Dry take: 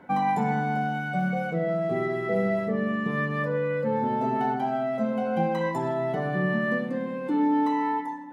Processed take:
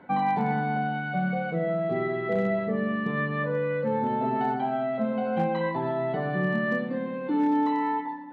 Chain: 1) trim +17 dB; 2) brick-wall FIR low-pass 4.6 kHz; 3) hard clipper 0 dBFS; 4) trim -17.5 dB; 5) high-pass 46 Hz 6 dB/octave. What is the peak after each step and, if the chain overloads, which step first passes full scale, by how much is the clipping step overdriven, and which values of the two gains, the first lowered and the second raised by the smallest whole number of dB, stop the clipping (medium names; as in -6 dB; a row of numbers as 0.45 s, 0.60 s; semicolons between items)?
+3.0 dBFS, +3.0 dBFS, 0.0 dBFS, -17.5 dBFS, -16.0 dBFS; step 1, 3.0 dB; step 1 +14 dB, step 4 -14.5 dB